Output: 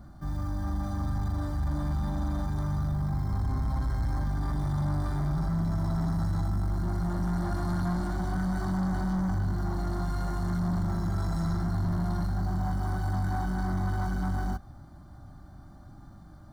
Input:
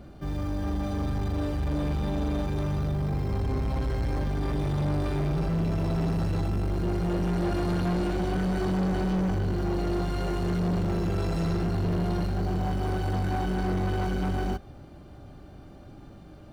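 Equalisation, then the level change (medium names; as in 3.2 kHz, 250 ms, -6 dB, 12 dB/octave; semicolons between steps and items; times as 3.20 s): static phaser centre 1.1 kHz, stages 4; 0.0 dB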